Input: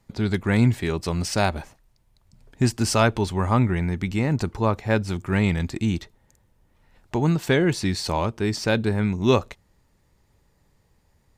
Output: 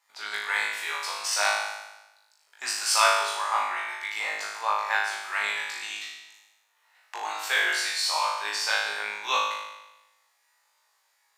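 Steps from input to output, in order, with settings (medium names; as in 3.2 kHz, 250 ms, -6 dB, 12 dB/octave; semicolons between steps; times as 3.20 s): high-pass 860 Hz 24 dB/octave; flutter echo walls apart 3.3 m, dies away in 1 s; trim -2 dB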